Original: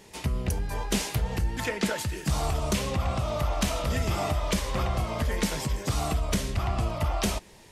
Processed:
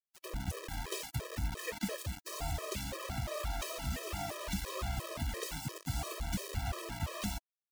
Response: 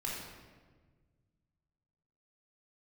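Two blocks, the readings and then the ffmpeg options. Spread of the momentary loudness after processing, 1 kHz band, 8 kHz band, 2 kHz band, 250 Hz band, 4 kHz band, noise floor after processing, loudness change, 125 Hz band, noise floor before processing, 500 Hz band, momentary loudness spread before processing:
3 LU, -10.5 dB, -8.0 dB, -9.0 dB, -11.5 dB, -8.5 dB, under -85 dBFS, -10.0 dB, -11.0 dB, -52 dBFS, -11.0 dB, 3 LU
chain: -af "acrusher=bits=4:mix=0:aa=0.000001,afftfilt=real='re*gt(sin(2*PI*2.9*pts/sr)*(1-2*mod(floor(b*sr/1024/330),2)),0)':imag='im*gt(sin(2*PI*2.9*pts/sr)*(1-2*mod(floor(b*sr/1024/330),2)),0)':win_size=1024:overlap=0.75,volume=-8.5dB"

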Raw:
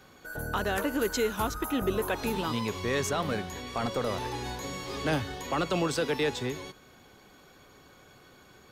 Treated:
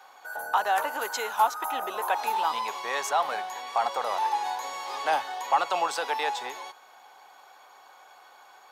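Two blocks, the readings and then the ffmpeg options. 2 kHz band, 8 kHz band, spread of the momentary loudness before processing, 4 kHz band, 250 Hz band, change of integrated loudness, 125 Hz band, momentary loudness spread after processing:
+2.5 dB, 0.0 dB, 8 LU, +0.5 dB, -17.0 dB, +2.5 dB, under -25 dB, 9 LU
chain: -af "highpass=f=820:t=q:w=4.6"

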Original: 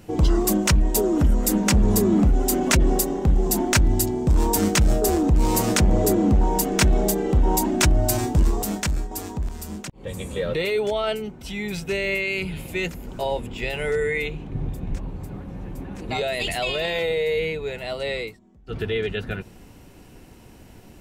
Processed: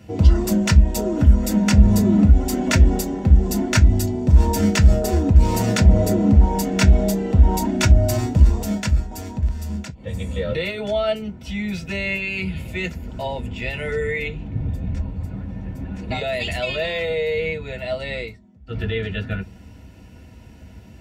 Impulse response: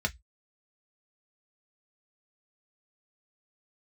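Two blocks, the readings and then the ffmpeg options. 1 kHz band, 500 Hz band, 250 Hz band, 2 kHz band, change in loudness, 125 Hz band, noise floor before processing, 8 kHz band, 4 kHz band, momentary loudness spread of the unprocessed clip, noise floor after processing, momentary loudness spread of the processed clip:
-1.0 dB, -0.5 dB, +2.5 dB, +0.5 dB, +3.0 dB, +6.5 dB, -47 dBFS, -4.5 dB, -1.0 dB, 13 LU, -44 dBFS, 14 LU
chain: -filter_complex "[1:a]atrim=start_sample=2205,atrim=end_sample=3528[a];[0:a][a]afir=irnorm=-1:irlink=0,volume=-6.5dB"

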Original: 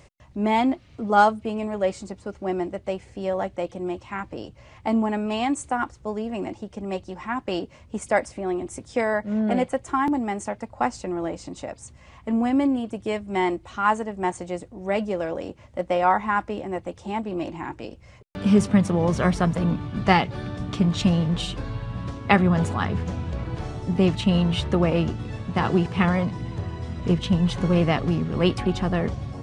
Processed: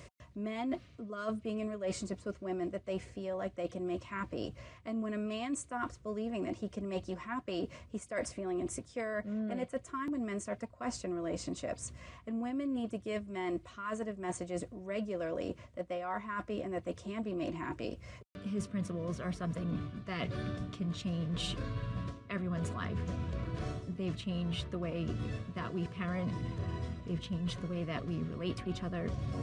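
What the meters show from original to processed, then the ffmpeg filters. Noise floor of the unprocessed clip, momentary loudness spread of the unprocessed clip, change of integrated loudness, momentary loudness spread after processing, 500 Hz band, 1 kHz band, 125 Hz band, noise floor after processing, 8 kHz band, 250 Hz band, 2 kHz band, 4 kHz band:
-51 dBFS, 13 LU, -13.5 dB, 4 LU, -12.0 dB, -18.0 dB, -12.5 dB, -57 dBFS, -6.5 dB, -13.0 dB, -14.5 dB, -11.5 dB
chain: -af "highpass=47,areverse,acompressor=threshold=-33dB:ratio=12,areverse,asuperstop=centerf=830:order=12:qfactor=4.9"

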